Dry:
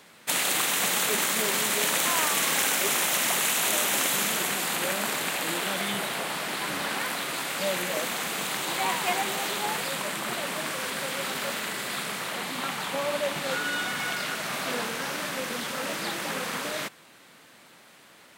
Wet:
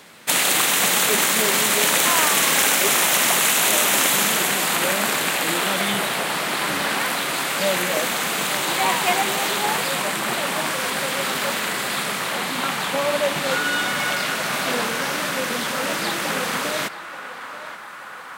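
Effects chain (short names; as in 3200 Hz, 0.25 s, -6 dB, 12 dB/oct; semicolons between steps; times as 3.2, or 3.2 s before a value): narrowing echo 0.882 s, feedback 81%, band-pass 1200 Hz, level -11 dB; gain +7 dB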